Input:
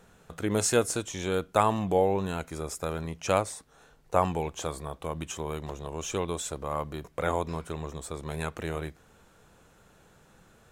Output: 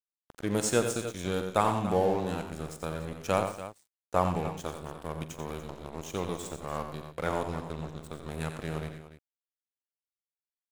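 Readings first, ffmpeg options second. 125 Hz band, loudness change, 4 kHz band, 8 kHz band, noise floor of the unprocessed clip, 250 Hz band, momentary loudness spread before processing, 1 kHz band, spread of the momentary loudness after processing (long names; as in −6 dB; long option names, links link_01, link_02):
−1.0 dB, −2.0 dB, −3.0 dB, −4.5 dB, −60 dBFS, −0.5 dB, 12 LU, −2.0 dB, 14 LU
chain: -af "adynamicequalizer=threshold=0.00631:dfrequency=160:dqfactor=1.4:tfrequency=160:tqfactor=1.4:attack=5:release=100:ratio=0.375:range=2.5:mode=boostabove:tftype=bell,aeval=exprs='sgn(val(0))*max(abs(val(0))-0.0133,0)':channel_layout=same,aecho=1:1:44|89|121|180|289:0.158|0.376|0.2|0.106|0.211,volume=-2dB"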